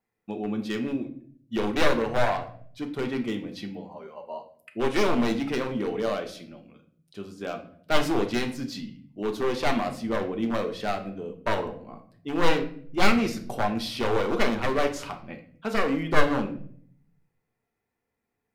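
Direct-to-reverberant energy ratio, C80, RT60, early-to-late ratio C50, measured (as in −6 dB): 4.0 dB, 15.0 dB, 0.55 s, 11.5 dB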